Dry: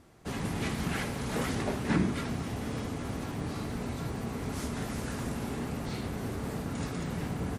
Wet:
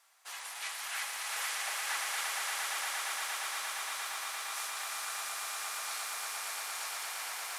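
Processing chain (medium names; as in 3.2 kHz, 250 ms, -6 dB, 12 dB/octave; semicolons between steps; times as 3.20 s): high-pass 810 Hz 24 dB/octave; tilt EQ +2.5 dB/octave; on a send: echo with a slow build-up 116 ms, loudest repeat 8, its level -6 dB; on the sum: trim -4.5 dB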